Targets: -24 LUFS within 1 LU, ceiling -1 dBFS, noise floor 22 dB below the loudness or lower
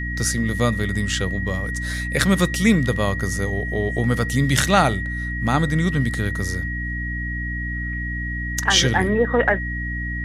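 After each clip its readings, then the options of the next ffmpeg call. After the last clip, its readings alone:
hum 60 Hz; highest harmonic 300 Hz; hum level -25 dBFS; steady tone 1.9 kHz; tone level -28 dBFS; loudness -21.5 LUFS; peak level -2.0 dBFS; loudness target -24.0 LUFS
-> -af "bandreject=f=60:t=h:w=4,bandreject=f=120:t=h:w=4,bandreject=f=180:t=h:w=4,bandreject=f=240:t=h:w=4,bandreject=f=300:t=h:w=4"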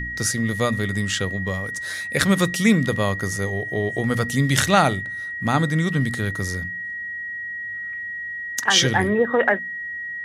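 hum not found; steady tone 1.9 kHz; tone level -28 dBFS
-> -af "bandreject=f=1900:w=30"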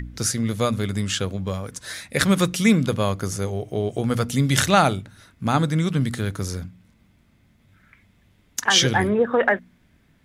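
steady tone not found; loudness -22.0 LUFS; peak level -3.0 dBFS; loudness target -24.0 LUFS
-> -af "volume=0.794"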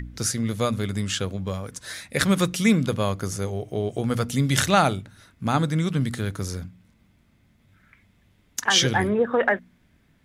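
loudness -24.0 LUFS; peak level -5.0 dBFS; noise floor -62 dBFS

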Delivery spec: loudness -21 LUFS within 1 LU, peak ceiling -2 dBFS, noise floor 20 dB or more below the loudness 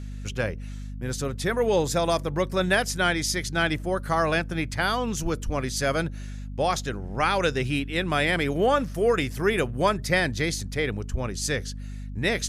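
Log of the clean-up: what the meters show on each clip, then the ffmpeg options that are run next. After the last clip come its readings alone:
hum 50 Hz; highest harmonic 250 Hz; hum level -33 dBFS; loudness -25.5 LUFS; peak level -7.5 dBFS; loudness target -21.0 LUFS
-> -af "bandreject=f=50:t=h:w=4,bandreject=f=100:t=h:w=4,bandreject=f=150:t=h:w=4,bandreject=f=200:t=h:w=4,bandreject=f=250:t=h:w=4"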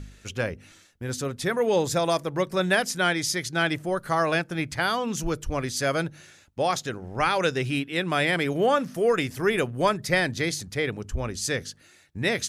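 hum not found; loudness -26.0 LUFS; peak level -7.5 dBFS; loudness target -21.0 LUFS
-> -af "volume=1.78"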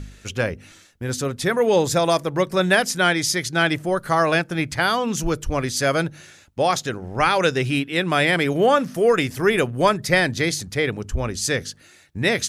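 loudness -21.0 LUFS; peak level -2.5 dBFS; noise floor -51 dBFS

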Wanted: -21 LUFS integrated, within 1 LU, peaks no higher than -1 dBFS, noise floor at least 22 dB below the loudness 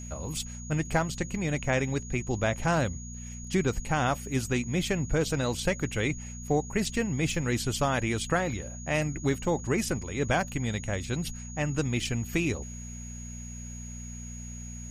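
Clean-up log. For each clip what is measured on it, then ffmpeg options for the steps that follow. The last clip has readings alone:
hum 60 Hz; highest harmonic 240 Hz; hum level -38 dBFS; steady tone 6.7 kHz; tone level -44 dBFS; loudness -29.5 LUFS; peak level -12.0 dBFS; loudness target -21.0 LUFS
-> -af "bandreject=f=60:t=h:w=4,bandreject=f=120:t=h:w=4,bandreject=f=180:t=h:w=4,bandreject=f=240:t=h:w=4"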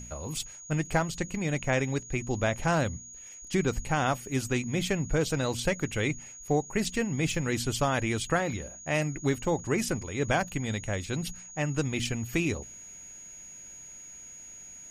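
hum not found; steady tone 6.7 kHz; tone level -44 dBFS
-> -af "bandreject=f=6700:w=30"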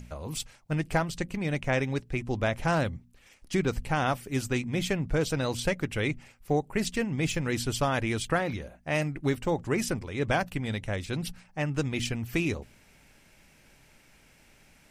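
steady tone not found; loudness -30.0 LUFS; peak level -12.0 dBFS; loudness target -21.0 LUFS
-> -af "volume=2.82"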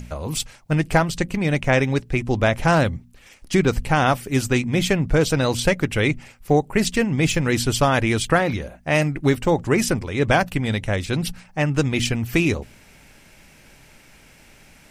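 loudness -21.0 LUFS; peak level -3.0 dBFS; noise floor -51 dBFS

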